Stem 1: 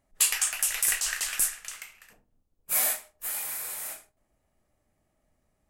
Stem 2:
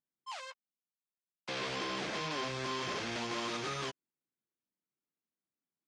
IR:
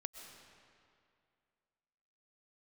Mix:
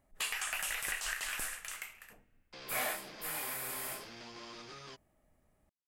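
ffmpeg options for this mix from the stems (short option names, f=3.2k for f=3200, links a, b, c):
-filter_complex "[0:a]equalizer=f=5.3k:t=o:w=1.4:g=-6.5,acrossover=split=5000[a][b];[b]acompressor=threshold=-39dB:ratio=4:attack=1:release=60[c];[a][c]amix=inputs=2:normalize=0,volume=0.5dB,asplit=2[d][e];[e]volume=-20dB[f];[1:a]equalizer=f=4.9k:w=6.9:g=9,adelay=1050,volume=-12.5dB[g];[2:a]atrim=start_sample=2205[h];[f][h]afir=irnorm=-1:irlink=0[i];[d][g][i]amix=inputs=3:normalize=0,alimiter=limit=-23dB:level=0:latency=1:release=235"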